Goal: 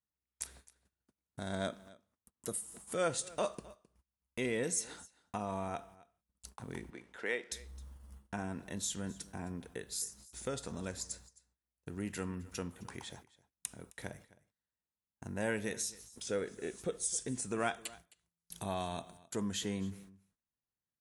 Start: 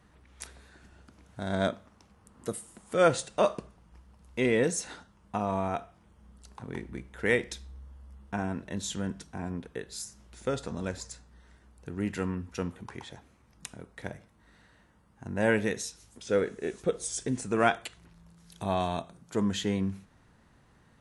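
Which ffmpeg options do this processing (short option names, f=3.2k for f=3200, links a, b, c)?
-filter_complex "[0:a]aemphasis=mode=production:type=50fm,agate=range=-40dB:threshold=-49dB:ratio=16:detection=peak,acompressor=threshold=-52dB:ratio=1.5,asettb=1/sr,asplit=3[a][b][c];[a]atrim=end=6.904[d];[b]atrim=start=6.9:end=7.52,asetpts=PTS-STARTPTS,afade=t=in:d=0.004:c=qsin,afade=t=out:st=0.616:d=0.004:c=qsin,highpass=350,lowpass=4.8k[e];[c]atrim=start=7.516[f];[d][e]acrossfade=d=0.004:c1=hsin:c2=qsin[g];[g][f]acrossfade=d=0.004:c1=qsin:c2=hsin,aecho=1:1:263:0.0891,volume=1dB"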